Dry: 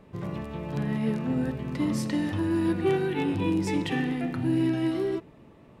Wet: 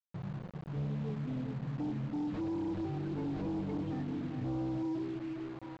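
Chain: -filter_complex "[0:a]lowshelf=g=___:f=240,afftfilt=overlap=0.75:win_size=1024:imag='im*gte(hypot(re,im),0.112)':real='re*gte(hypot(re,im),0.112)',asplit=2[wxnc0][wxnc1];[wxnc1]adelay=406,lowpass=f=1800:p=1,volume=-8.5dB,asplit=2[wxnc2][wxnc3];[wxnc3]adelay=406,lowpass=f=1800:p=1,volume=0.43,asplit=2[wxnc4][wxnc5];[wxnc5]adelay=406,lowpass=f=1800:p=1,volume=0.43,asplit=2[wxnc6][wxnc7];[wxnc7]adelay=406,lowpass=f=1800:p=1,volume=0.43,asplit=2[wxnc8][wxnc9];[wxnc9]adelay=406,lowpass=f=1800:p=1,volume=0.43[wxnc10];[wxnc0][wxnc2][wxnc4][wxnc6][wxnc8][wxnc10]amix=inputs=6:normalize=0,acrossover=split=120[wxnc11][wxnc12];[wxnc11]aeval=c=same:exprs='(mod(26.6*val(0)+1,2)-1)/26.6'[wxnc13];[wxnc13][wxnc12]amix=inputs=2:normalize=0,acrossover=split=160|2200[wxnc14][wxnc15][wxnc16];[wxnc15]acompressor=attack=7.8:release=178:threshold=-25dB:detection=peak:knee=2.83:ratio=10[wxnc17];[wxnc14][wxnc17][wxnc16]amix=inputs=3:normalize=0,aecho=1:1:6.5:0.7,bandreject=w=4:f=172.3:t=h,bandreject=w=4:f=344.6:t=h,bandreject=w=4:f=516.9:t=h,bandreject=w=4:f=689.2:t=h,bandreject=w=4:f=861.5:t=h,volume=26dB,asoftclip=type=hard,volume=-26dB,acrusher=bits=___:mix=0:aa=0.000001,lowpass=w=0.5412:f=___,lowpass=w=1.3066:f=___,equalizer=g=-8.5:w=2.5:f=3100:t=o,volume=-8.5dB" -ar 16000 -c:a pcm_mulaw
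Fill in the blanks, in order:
3.5, 5, 4000, 4000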